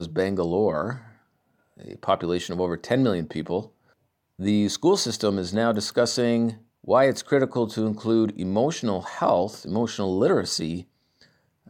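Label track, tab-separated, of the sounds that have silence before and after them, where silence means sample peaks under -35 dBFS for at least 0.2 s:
1.800000	3.650000	sound
4.390000	6.540000	sound
6.840000	10.820000	sound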